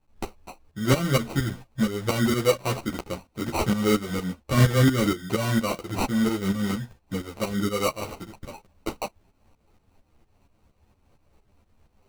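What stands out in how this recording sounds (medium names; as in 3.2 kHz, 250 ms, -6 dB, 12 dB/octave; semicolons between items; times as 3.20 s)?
tremolo saw up 4.3 Hz, depth 75%; aliases and images of a low sample rate 1.7 kHz, jitter 0%; a shimmering, thickened sound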